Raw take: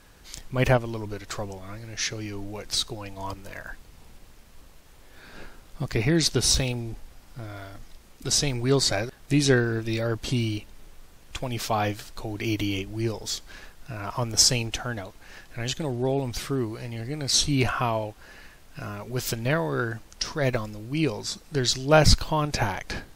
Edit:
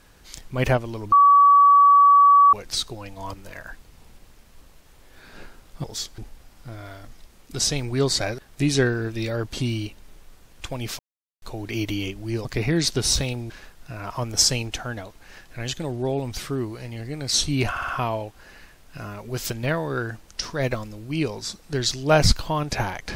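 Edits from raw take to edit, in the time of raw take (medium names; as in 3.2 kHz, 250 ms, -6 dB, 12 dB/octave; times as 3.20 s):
1.12–2.53 s: bleep 1.14 kHz -10 dBFS
5.84–6.89 s: swap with 13.16–13.50 s
11.70–12.13 s: mute
17.70 s: stutter 0.06 s, 4 plays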